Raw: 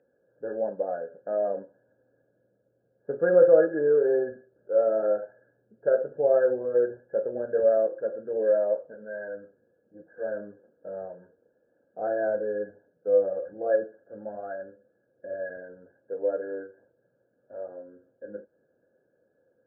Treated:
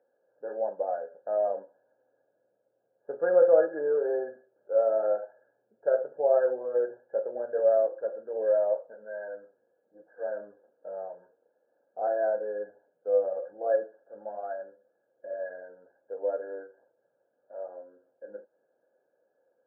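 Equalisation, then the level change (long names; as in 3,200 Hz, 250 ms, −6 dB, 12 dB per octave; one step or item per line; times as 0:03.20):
resonant band-pass 860 Hz, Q 2
+4.5 dB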